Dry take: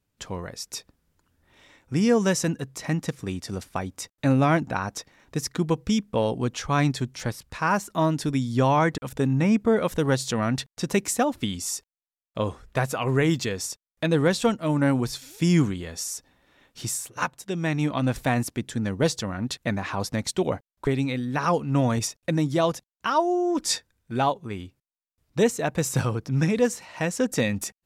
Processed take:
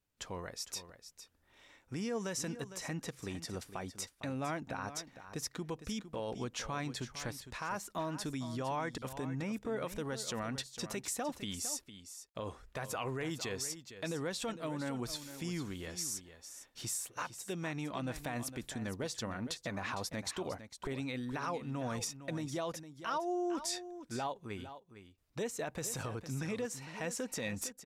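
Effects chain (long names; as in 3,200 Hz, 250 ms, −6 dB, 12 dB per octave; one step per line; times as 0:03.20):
downward compressor, threshold −23 dBFS, peak gain reduction 8 dB
brickwall limiter −21 dBFS, peak gain reduction 8 dB
parametric band 140 Hz −6 dB 2.4 octaves
single-tap delay 457 ms −12 dB
level −6 dB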